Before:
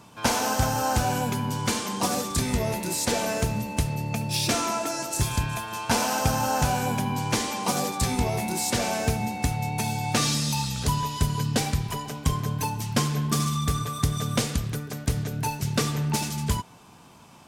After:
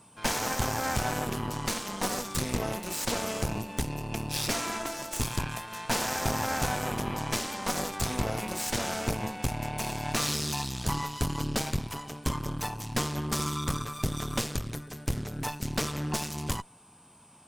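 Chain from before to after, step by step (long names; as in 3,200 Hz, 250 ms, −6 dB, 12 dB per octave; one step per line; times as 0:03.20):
harmonic generator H 8 −12 dB, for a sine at −7 dBFS
steady tone 8,100 Hz −50 dBFS
level −7.5 dB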